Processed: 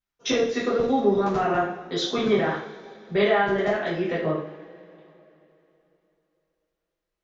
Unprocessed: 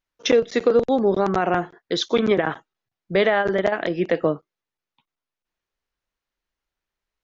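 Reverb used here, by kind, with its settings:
coupled-rooms reverb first 0.53 s, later 3.3 s, from −22 dB, DRR −9 dB
level −11.5 dB

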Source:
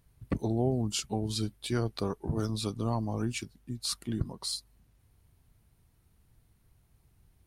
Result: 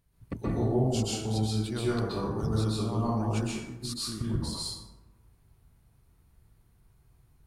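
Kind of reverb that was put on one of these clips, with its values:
dense smooth reverb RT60 1.1 s, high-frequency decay 0.45×, pre-delay 115 ms, DRR −7.5 dB
level −6 dB

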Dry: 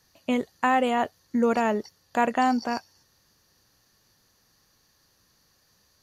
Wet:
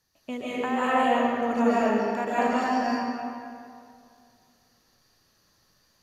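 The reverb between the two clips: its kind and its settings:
comb and all-pass reverb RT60 2.3 s, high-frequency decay 0.7×, pre-delay 105 ms, DRR −10 dB
level −9.5 dB

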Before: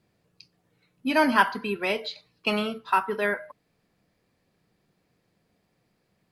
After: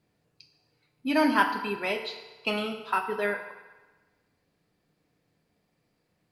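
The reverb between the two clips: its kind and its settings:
feedback delay network reverb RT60 1.3 s, low-frequency decay 0.7×, high-frequency decay 0.85×, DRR 5.5 dB
level −3.5 dB

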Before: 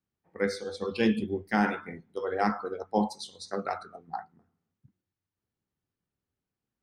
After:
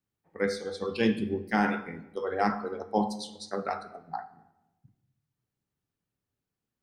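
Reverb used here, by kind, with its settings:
rectangular room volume 470 cubic metres, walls mixed, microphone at 0.34 metres

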